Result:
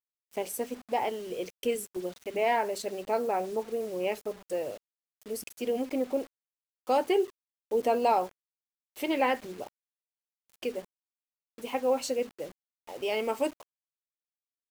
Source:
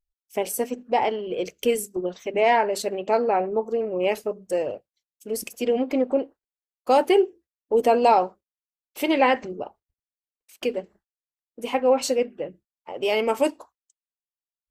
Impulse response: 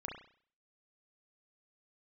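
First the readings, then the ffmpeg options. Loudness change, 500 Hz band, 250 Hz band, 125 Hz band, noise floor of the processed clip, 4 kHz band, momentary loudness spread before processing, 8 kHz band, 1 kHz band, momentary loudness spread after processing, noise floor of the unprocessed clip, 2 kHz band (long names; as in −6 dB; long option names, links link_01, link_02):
−7.5 dB, −7.5 dB, −7.5 dB, can't be measured, below −85 dBFS, −7.0 dB, 14 LU, −7.0 dB, −7.5 dB, 13 LU, below −85 dBFS, −7.5 dB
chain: -af "acrusher=bits=6:mix=0:aa=0.000001,volume=-7.5dB"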